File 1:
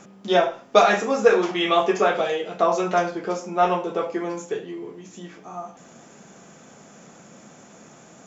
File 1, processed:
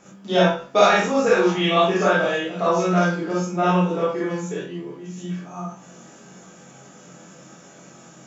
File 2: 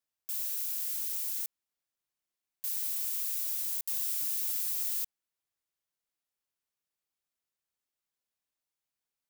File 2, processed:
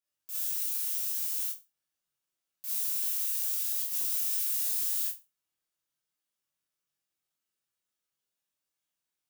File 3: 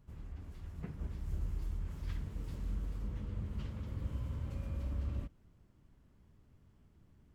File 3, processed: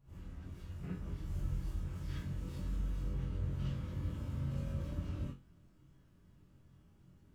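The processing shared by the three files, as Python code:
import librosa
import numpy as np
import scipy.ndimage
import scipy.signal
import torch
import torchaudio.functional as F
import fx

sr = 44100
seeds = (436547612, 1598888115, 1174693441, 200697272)

y = fx.room_flutter(x, sr, wall_m=3.8, rt60_s=0.24)
y = fx.rev_gated(y, sr, seeds[0], gate_ms=80, shape='rising', drr_db=-6.0)
y = fx.dynamic_eq(y, sr, hz=170.0, q=2.0, threshold_db=-35.0, ratio=4.0, max_db=6)
y = y * librosa.db_to_amplitude(-6.5)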